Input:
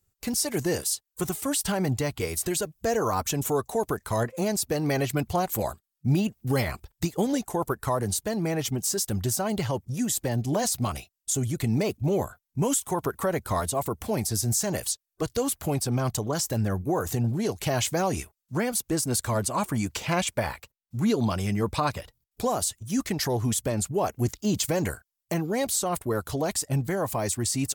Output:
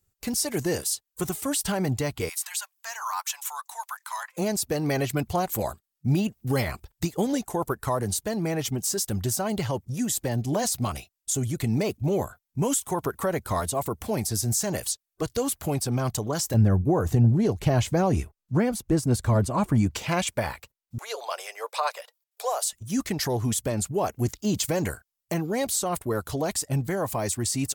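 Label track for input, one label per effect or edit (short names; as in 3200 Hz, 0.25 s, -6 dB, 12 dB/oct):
2.290000	4.370000	elliptic high-pass 900 Hz, stop band 60 dB
16.540000	19.960000	tilt -2.5 dB/oct
20.980000	22.730000	steep high-pass 490 Hz 48 dB/oct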